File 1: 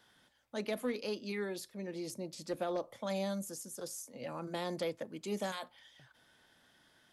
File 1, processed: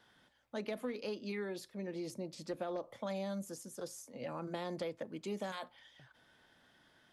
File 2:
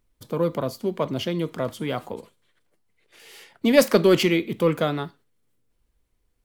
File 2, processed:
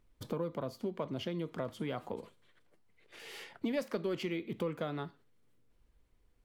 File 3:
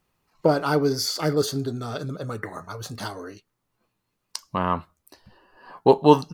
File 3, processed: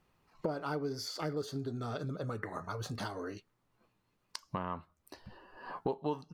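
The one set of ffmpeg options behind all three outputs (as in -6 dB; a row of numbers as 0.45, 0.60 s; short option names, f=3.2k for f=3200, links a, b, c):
-af "acompressor=threshold=-37dB:ratio=4,highshelf=f=5.4k:g=-9.5,volume=1dB"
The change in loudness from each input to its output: -2.5, -15.5, -15.0 LU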